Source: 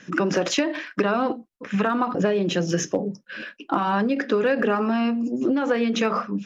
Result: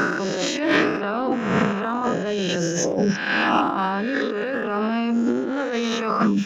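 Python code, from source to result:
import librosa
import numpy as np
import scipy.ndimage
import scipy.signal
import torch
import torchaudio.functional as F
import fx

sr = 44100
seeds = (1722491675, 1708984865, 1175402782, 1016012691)

y = fx.spec_swells(x, sr, rise_s=1.09)
y = fx.over_compress(y, sr, threshold_db=-27.0, ratio=-1.0)
y = F.gain(torch.from_numpy(y), 4.5).numpy()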